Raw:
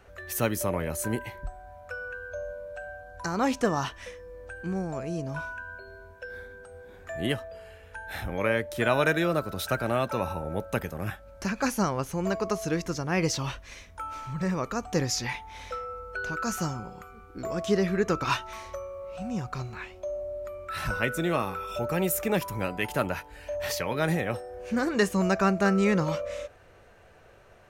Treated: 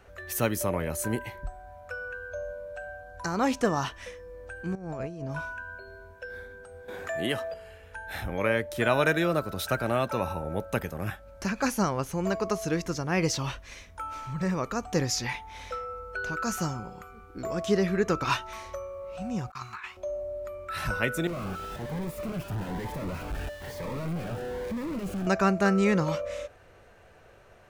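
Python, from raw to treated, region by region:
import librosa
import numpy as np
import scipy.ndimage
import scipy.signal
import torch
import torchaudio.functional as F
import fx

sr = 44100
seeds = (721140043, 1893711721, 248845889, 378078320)

y = fx.chain(x, sr, fx.over_compress(threshold_db=-35.0, ratio=-0.5),
    fx.high_shelf(hz=6100.0, db=-11.5), at=(4.75, 5.31))
y = fx.chain(y, sr, fx.highpass(hz=290.0, slope=6),
    fx.env_flatten(amount_pct=50), at=(6.88, 7.54))
y = fx.chain(y, sr, fx.highpass(hz=61.0, slope=12),
    fx.low_shelf_res(hz=770.0, db=-12.5, q=3.0),
    fx.over_compress(threshold_db=-39.0, ratio=-0.5), at=(19.5, 19.97))
y = fx.chain(y, sr, fx.clip_1bit(),
    fx.curve_eq(hz=(160.0, 1500.0, 3700.0, 5800.0), db=(0, -7, -15, -18)),
    fx.notch_cascade(direction='rising', hz=1.1), at=(21.27, 25.27))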